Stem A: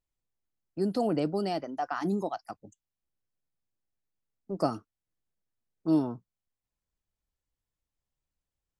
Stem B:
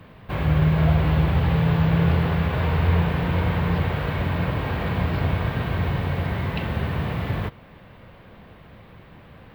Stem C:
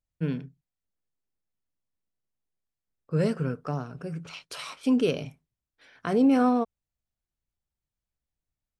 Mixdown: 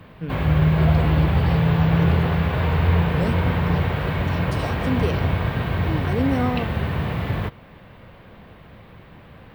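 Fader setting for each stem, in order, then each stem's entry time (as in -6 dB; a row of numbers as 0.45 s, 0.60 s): -5.5 dB, +1.5 dB, -2.0 dB; 0.00 s, 0.00 s, 0.00 s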